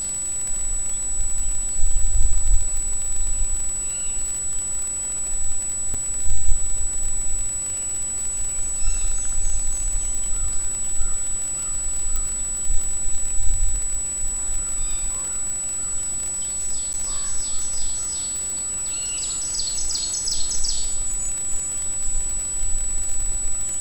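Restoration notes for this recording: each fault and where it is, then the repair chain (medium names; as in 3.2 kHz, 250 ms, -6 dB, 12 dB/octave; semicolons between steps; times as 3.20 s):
crackle 41 per s -24 dBFS
whine 7.9 kHz -24 dBFS
5.94–5.95 s: dropout 5.9 ms
12.16 s: pop -11 dBFS
16.93–16.94 s: dropout 9.7 ms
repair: de-click; band-stop 7.9 kHz, Q 30; interpolate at 5.94 s, 5.9 ms; interpolate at 16.93 s, 9.7 ms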